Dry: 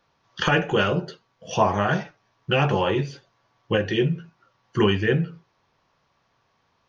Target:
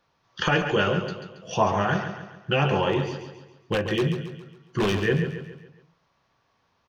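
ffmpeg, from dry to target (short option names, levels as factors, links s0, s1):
-filter_complex "[0:a]asplit=3[s0][s1][s2];[s0]afade=t=out:st=2.92:d=0.02[s3];[s1]aeval=exprs='0.178*(abs(mod(val(0)/0.178+3,4)-2)-1)':c=same,afade=t=in:st=2.92:d=0.02,afade=t=out:st=4.95:d=0.02[s4];[s2]afade=t=in:st=4.95:d=0.02[s5];[s3][s4][s5]amix=inputs=3:normalize=0,aecho=1:1:138|276|414|552|690:0.376|0.169|0.0761|0.0342|0.0154,volume=0.794"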